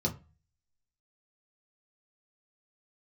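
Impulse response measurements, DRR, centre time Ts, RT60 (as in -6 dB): -1.5 dB, 10 ms, 0.30 s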